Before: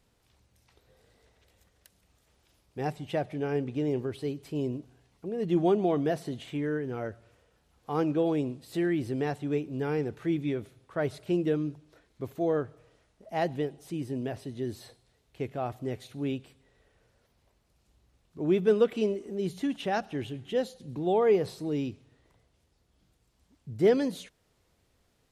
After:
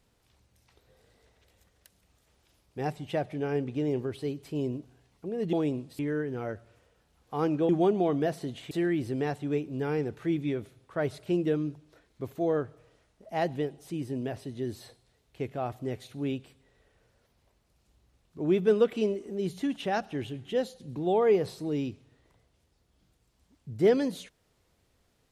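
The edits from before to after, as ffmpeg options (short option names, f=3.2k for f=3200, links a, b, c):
-filter_complex "[0:a]asplit=5[a][b][c][d][e];[a]atrim=end=5.532[f];[b]atrim=start=8.248:end=8.712[g];[c]atrim=start=6.548:end=8.252[h];[d]atrim=start=5.528:end=6.552[i];[e]atrim=start=8.708[j];[f][g]acrossfade=d=0.004:c1=hsin:c2=hsin[k];[k][h]acrossfade=d=0.004:c1=hsin:c2=hsin[l];[l][i]acrossfade=d=0.004:c1=hsin:c2=hsin[m];[m][j]acrossfade=d=0.004:c1=hsin:c2=hsin"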